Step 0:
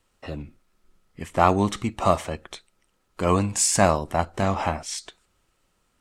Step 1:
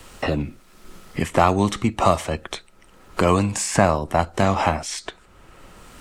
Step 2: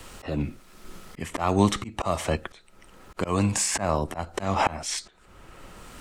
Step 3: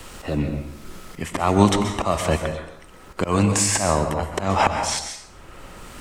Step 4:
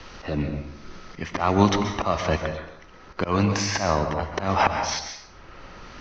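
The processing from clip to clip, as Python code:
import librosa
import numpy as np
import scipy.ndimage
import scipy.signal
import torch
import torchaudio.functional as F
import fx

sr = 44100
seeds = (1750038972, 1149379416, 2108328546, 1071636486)

y1 = fx.band_squash(x, sr, depth_pct=70)
y1 = y1 * librosa.db_to_amplitude(4.0)
y2 = fx.auto_swell(y1, sr, attack_ms=224.0)
y3 = fx.rev_plate(y2, sr, seeds[0], rt60_s=0.78, hf_ratio=0.7, predelay_ms=115, drr_db=6.0)
y3 = y3 * librosa.db_to_amplitude(4.5)
y4 = scipy.signal.sosfilt(scipy.signal.cheby1(6, 3, 6200.0, 'lowpass', fs=sr, output='sos'), y3)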